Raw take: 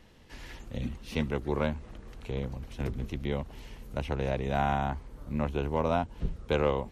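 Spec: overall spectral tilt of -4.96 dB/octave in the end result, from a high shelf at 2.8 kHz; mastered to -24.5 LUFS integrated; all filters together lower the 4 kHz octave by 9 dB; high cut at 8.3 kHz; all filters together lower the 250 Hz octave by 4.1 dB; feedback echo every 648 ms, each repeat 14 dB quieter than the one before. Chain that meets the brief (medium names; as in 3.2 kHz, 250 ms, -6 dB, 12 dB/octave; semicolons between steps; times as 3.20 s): low-pass 8.3 kHz; peaking EQ 250 Hz -5.5 dB; treble shelf 2.8 kHz -6 dB; peaking EQ 4 kHz -7.5 dB; feedback delay 648 ms, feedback 20%, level -14 dB; trim +10 dB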